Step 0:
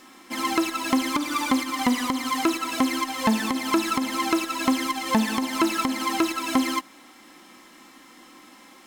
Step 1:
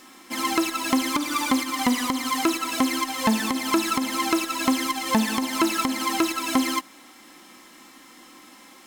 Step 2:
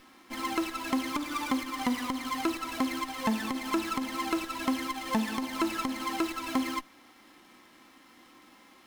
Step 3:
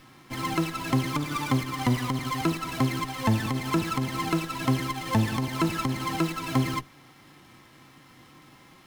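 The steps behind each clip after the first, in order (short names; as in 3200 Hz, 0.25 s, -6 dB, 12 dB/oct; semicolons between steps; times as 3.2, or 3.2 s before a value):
high shelf 4600 Hz +4.5 dB
running maximum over 5 samples; gain -7 dB
octaver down 1 oct, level +2 dB; gain +2.5 dB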